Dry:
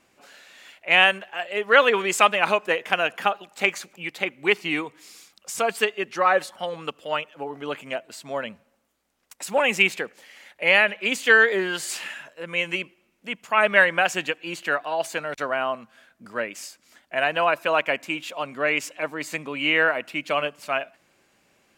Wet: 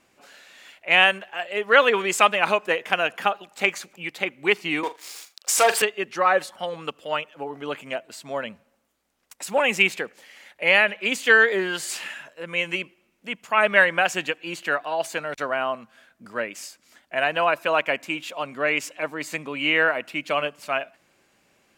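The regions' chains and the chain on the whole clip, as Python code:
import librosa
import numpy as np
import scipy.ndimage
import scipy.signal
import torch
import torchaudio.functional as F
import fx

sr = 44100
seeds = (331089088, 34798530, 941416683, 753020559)

y = fx.chain(x, sr, fx.leveller(passes=3),
    fx.highpass(hz=480.0, slope=12),
    fx.room_flutter(wall_m=7.1, rt60_s=0.21), at=(4.83, 5.82))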